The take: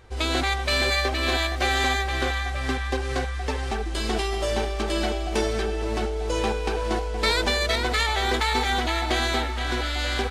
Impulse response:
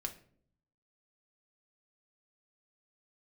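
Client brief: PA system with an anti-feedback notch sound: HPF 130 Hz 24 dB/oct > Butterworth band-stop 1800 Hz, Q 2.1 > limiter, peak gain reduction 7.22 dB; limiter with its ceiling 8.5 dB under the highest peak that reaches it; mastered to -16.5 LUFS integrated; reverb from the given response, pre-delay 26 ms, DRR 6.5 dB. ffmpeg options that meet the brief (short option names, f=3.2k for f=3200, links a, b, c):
-filter_complex "[0:a]alimiter=limit=-17.5dB:level=0:latency=1,asplit=2[a][b];[1:a]atrim=start_sample=2205,adelay=26[c];[b][c]afir=irnorm=-1:irlink=0,volume=-5.5dB[d];[a][d]amix=inputs=2:normalize=0,highpass=f=130:w=0.5412,highpass=f=130:w=1.3066,asuperstop=centerf=1800:order=8:qfactor=2.1,volume=15.5dB,alimiter=limit=-7.5dB:level=0:latency=1"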